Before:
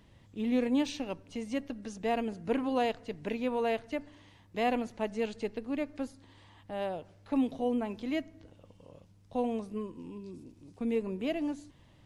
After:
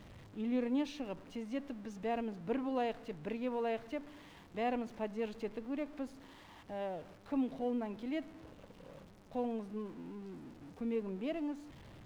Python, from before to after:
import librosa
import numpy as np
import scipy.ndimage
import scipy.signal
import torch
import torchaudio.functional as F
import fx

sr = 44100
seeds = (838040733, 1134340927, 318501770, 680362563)

y = x + 0.5 * 10.0 ** (-43.5 / 20.0) * np.sign(x)
y = fx.high_shelf(y, sr, hz=4700.0, db=-12.0)
y = fx.hum_notches(y, sr, base_hz=50, count=2)
y = y * 10.0 ** (-6.0 / 20.0)